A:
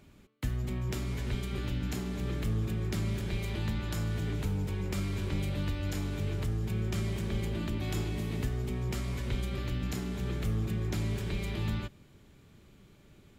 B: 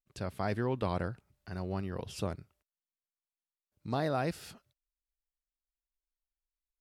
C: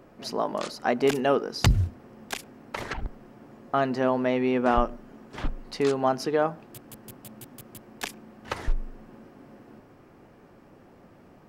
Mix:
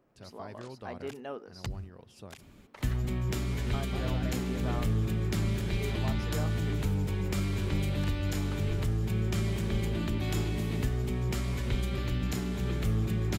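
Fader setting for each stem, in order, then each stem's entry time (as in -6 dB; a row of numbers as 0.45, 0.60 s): +2.5, -12.5, -17.0 dB; 2.40, 0.00, 0.00 s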